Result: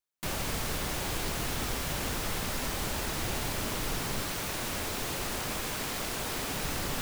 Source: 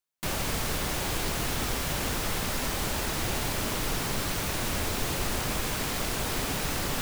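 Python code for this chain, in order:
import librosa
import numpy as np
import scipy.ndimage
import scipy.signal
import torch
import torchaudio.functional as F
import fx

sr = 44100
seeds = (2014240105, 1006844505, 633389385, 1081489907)

y = fx.low_shelf(x, sr, hz=160.0, db=-6.0, at=(4.25, 6.56))
y = y * librosa.db_to_amplitude(-3.0)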